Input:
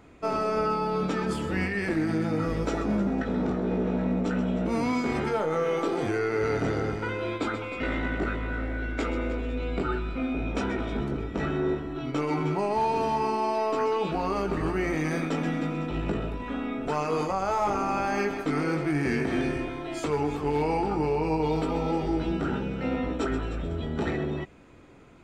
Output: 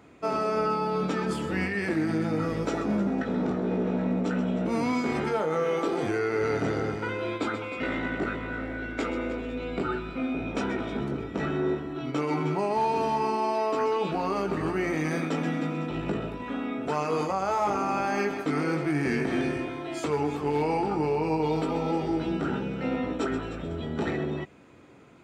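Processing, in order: high-pass 100 Hz 12 dB/octave

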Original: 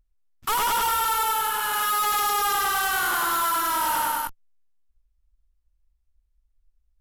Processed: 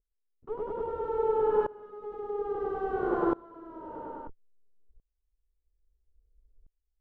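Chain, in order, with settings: resonant low-pass 440 Hz, resonance Q 4.9; sawtooth tremolo in dB swelling 0.6 Hz, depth 24 dB; trim +7 dB

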